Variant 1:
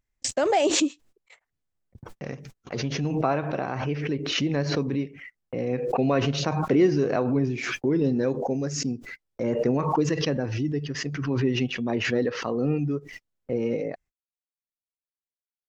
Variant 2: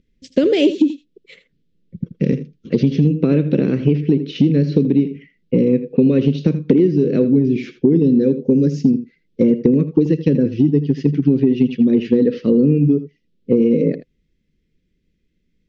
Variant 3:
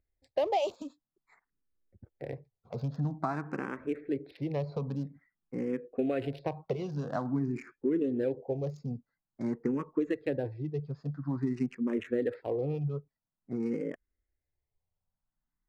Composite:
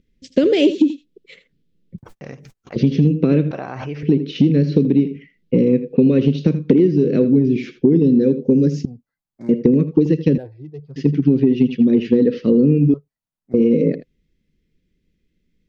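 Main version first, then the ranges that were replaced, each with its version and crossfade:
2
1.98–2.76 from 1
3.51–4.03 from 1
8.85–9.49 from 3
10.38–10.96 from 3
12.94–13.54 from 3

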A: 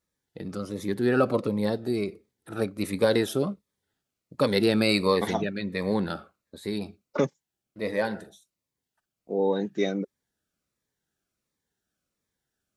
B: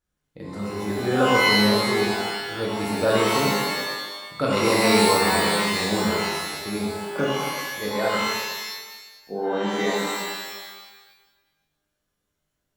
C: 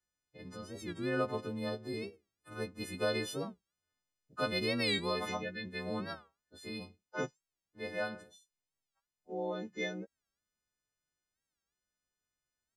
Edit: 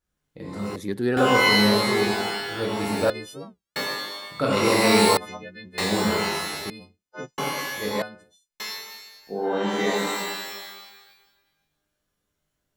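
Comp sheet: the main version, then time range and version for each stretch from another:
B
0.76–1.17 from A
3.1–3.76 from C
5.17–5.78 from C
6.7–7.38 from C
8.02–8.6 from C

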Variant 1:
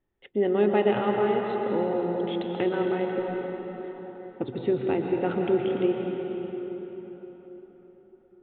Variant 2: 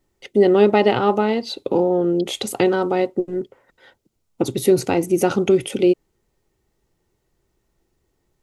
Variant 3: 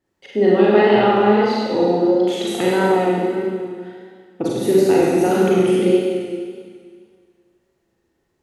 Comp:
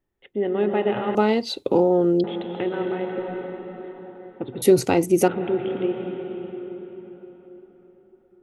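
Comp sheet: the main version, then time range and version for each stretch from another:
1
1.15–2.24 from 2
4.62–5.28 from 2
not used: 3

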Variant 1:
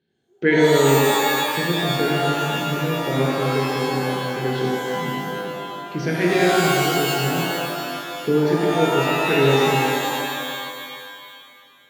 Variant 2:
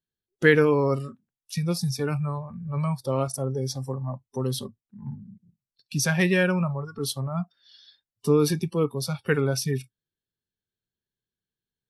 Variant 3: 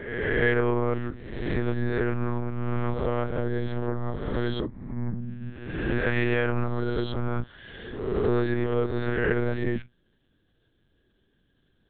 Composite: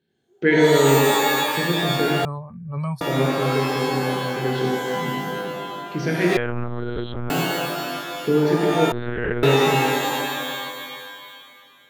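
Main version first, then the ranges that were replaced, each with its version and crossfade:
1
2.25–3.01 from 2
6.37–7.3 from 3
8.92–9.43 from 3

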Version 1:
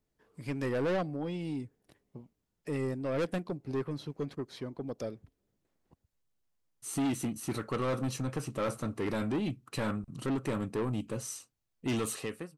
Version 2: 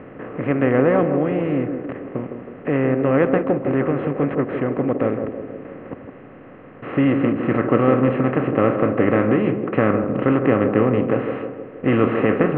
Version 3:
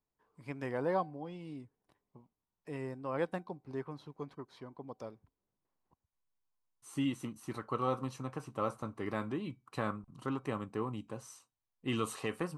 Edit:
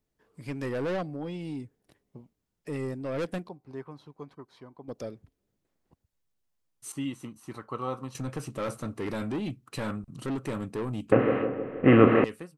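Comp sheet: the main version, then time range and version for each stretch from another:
1
3.49–4.88 from 3
6.92–8.15 from 3
11.12–12.24 from 2

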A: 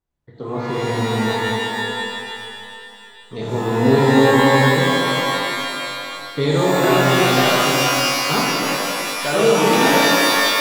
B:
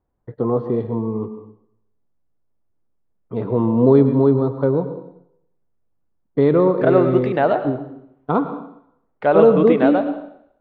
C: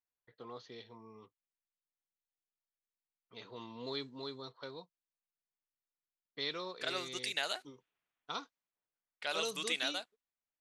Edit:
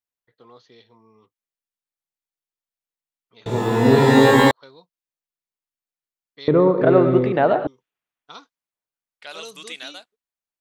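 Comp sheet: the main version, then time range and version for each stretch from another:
C
3.46–4.51 from A
6.48–7.67 from B

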